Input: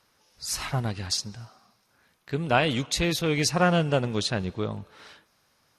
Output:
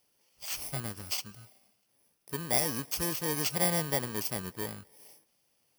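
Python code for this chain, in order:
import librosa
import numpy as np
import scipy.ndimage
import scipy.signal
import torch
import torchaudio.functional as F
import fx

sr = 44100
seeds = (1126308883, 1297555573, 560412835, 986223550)

y = fx.bit_reversed(x, sr, seeds[0], block=32)
y = fx.low_shelf(y, sr, hz=180.0, db=-8.5)
y = y * librosa.db_to_amplitude(-5.5)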